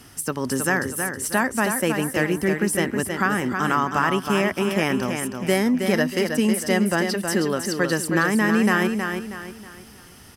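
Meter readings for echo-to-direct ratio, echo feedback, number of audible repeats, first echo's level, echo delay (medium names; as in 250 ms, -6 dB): -5.5 dB, 37%, 4, -6.0 dB, 319 ms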